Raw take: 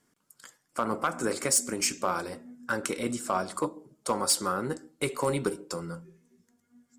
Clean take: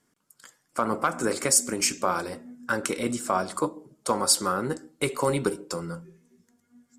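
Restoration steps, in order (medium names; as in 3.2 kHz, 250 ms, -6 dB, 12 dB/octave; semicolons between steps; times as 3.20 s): clip repair -17 dBFS; gain correction +3 dB, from 0.57 s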